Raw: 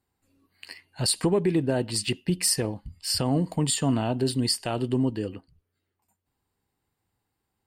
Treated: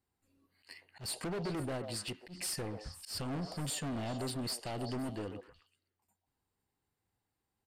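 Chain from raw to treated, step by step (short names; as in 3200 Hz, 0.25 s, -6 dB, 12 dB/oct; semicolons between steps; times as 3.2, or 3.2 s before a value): 1.76–2.35 compressor, threshold -27 dBFS, peak gain reduction 7.5 dB; hard clip -29 dBFS, distortion -5 dB; downsampling 32000 Hz; delay with a stepping band-pass 0.128 s, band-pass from 590 Hz, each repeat 1.4 oct, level -5 dB; auto swell 0.115 s; gain -6.5 dB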